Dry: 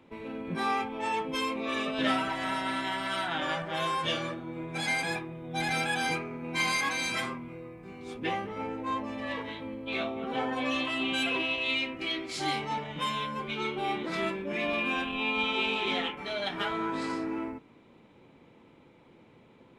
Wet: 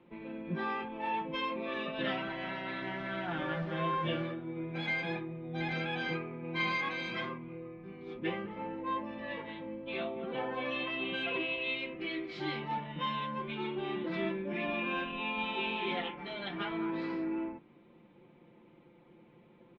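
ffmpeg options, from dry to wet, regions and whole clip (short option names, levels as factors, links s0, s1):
-filter_complex "[0:a]asettb=1/sr,asplit=3[s0][s1][s2];[s0]atrim=end=2.824[s3];[s1]atrim=start=2.82:end=4.23,asetpts=PTS-STARTPTS,afade=t=in:d=0.004:c=qsin,afade=t=out:st=1.406:d=0.004:c=qsin,lowpass=2800,lowshelf=f=270:g=6,acrusher=bits=6:mix=0:aa=0.5[s4];[s2]atrim=start=4.226[s5];[s3][s4]acrossfade=d=0.004:c1=hsin:c2=qsin[s6];[s6][s5]acrossfade=d=0.004:c1=qsin:c2=hsin,lowpass=f=3700:w=0.5412,lowpass=f=3700:w=1.3066,equalizer=f=260:w=0.66:g=4.5,aecho=1:1:5.7:0.59,volume=0.447"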